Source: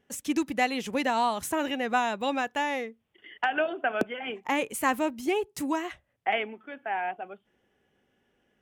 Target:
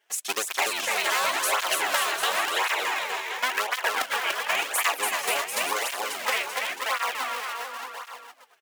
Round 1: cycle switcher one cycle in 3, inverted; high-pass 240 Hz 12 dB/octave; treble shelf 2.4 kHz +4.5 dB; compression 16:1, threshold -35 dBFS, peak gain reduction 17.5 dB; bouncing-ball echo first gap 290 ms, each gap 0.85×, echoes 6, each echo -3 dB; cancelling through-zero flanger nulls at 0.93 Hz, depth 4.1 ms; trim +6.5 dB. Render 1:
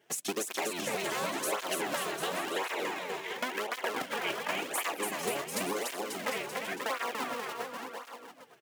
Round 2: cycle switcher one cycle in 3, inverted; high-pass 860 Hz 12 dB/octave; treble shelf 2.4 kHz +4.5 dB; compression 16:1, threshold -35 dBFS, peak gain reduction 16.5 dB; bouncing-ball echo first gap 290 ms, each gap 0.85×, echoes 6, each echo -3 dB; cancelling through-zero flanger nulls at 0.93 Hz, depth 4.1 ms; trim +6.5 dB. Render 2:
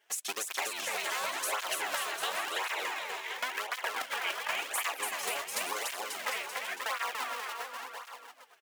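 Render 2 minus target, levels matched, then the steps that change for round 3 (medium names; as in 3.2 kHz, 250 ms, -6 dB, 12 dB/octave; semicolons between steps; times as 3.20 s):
compression: peak gain reduction +10.5 dB
change: compression 16:1, threshold -24 dBFS, peak gain reduction 6 dB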